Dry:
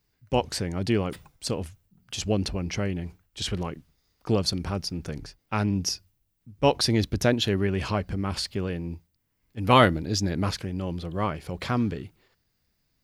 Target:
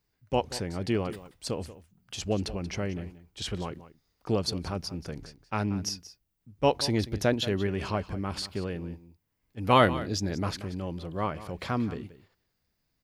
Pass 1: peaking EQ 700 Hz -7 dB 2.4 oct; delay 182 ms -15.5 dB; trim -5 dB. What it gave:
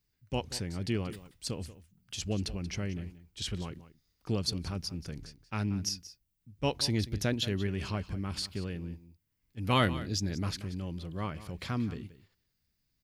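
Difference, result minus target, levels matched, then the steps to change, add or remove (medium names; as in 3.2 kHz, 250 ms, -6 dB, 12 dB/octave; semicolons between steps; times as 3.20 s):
500 Hz band -4.5 dB
change: peaking EQ 700 Hz +3 dB 2.4 oct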